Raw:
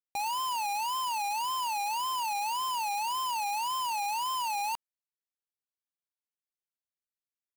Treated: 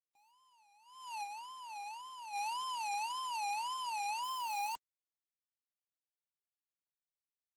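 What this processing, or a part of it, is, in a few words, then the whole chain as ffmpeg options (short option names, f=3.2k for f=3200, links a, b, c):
video call: -filter_complex "[0:a]asettb=1/sr,asplit=3[a][b][c];[a]atrim=end=1.234[d];[b]atrim=start=1.23:end=2.33,asetpts=PTS-STARTPTS,afade=t=in:d=0.004:c=qsin,afade=t=out:st=1.096:d=0.004:c=qsin,equalizer=f=7k:w=0.49:g=-2.5[e];[c]atrim=start=2.326[f];[d][e]acrossfade=d=0.004:c1=hsin:c2=qsin[g];[g][f]acrossfade=d=0.004:c1=qsin:c2=hsin,highpass=180,dynaudnorm=f=220:g=7:m=6.5dB,agate=range=-52dB:threshold=-22dB:ratio=16:detection=peak,volume=14dB" -ar 48000 -c:a libopus -b:a 16k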